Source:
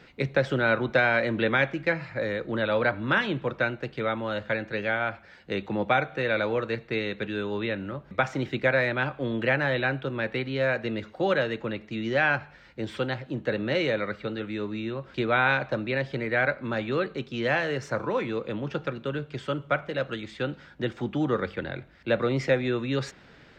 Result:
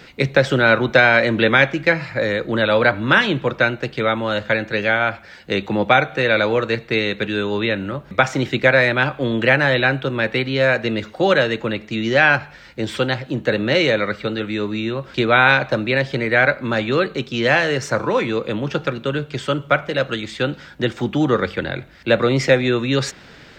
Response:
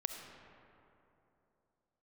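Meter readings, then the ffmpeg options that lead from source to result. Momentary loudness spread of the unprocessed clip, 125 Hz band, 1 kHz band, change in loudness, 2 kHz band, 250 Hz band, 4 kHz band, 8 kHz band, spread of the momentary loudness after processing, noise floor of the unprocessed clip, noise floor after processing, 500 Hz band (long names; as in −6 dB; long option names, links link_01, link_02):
9 LU, +8.5 dB, +9.0 dB, +9.5 dB, +10.0 dB, +8.5 dB, +12.5 dB, can't be measured, 10 LU, −53 dBFS, −43 dBFS, +8.5 dB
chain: -af "highshelf=frequency=4200:gain=9.5,volume=8.5dB"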